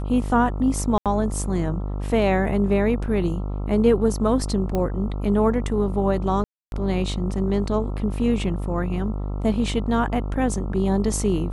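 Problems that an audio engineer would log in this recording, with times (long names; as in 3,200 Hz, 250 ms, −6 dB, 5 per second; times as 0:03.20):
mains buzz 50 Hz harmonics 27 −27 dBFS
0:00.98–0:01.06: drop-out 77 ms
0:04.75: click −13 dBFS
0:06.44–0:06.72: drop-out 281 ms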